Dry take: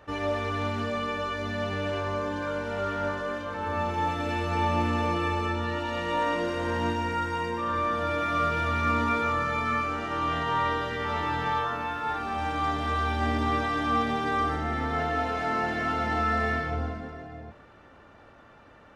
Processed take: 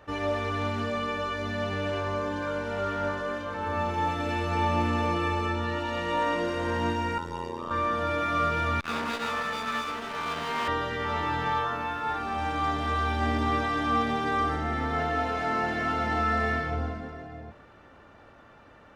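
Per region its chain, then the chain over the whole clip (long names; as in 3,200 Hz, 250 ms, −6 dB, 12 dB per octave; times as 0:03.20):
0:07.18–0:07.71: flat-topped bell 1,800 Hz −8.5 dB 1.2 octaves + amplitude modulation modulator 85 Hz, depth 100%
0:08.80–0:10.68: lower of the sound and its delayed copy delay 4.5 ms + low-shelf EQ 160 Hz −6.5 dB + saturating transformer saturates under 880 Hz
whole clip: no processing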